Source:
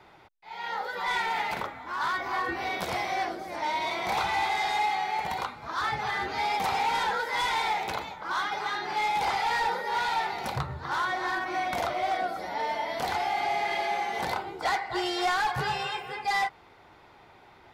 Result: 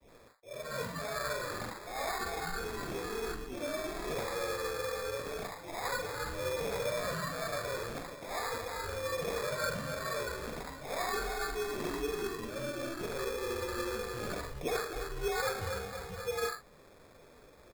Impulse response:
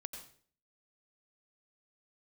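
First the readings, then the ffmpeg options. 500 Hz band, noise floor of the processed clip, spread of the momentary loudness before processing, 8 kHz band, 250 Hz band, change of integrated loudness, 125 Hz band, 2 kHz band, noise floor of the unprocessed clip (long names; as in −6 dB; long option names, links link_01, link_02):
+0.5 dB, −58 dBFS, 6 LU, +1.5 dB, −2.0 dB, −7.5 dB, −1.5 dB, −9.0 dB, −55 dBFS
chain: -filter_complex "[0:a]adynamicequalizer=threshold=0.00891:dfrequency=850:dqfactor=1.6:tfrequency=850:tqfactor=1.6:attack=5:release=100:ratio=0.375:range=2.5:mode=cutabove:tftype=bell,asplit=2[link_01][link_02];[link_02]alimiter=level_in=6dB:limit=-24dB:level=0:latency=1,volume=-6dB,volume=-3dB[link_03];[link_01][link_03]amix=inputs=2:normalize=0,highpass=frequency=270:width_type=q:width=0.5412,highpass=frequency=270:width_type=q:width=1.307,lowpass=frequency=2000:width_type=q:width=0.5176,lowpass=frequency=2000:width_type=q:width=0.7071,lowpass=frequency=2000:width_type=q:width=1.932,afreqshift=-310,flanger=delay=3.8:depth=6.2:regen=-48:speed=1.5:shape=sinusoidal,afreqshift=-13,asplit=2[link_04][link_05];[link_05]adelay=45,volume=-8dB[link_06];[link_04][link_06]amix=inputs=2:normalize=0,acrossover=split=850[link_07][link_08];[link_08]adelay=70[link_09];[link_07][link_09]amix=inputs=2:normalize=0,acrusher=samples=15:mix=1:aa=0.000001,volume=-2dB"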